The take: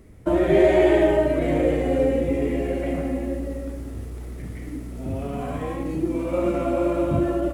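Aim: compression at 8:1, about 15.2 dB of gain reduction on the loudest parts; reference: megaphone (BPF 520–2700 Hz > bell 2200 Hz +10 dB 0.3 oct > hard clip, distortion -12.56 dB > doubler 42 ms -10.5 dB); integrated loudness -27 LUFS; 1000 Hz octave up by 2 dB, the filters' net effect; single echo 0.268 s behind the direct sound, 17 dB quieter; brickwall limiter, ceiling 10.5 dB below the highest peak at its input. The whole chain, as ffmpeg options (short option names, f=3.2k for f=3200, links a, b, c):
-filter_complex "[0:a]equalizer=f=1k:t=o:g=4,acompressor=threshold=-28dB:ratio=8,alimiter=level_in=4.5dB:limit=-24dB:level=0:latency=1,volume=-4.5dB,highpass=520,lowpass=2.7k,equalizer=f=2.2k:t=o:w=0.3:g=10,aecho=1:1:268:0.141,asoftclip=type=hard:threshold=-38.5dB,asplit=2[a][b];[b]adelay=42,volume=-10.5dB[c];[a][c]amix=inputs=2:normalize=0,volume=16dB"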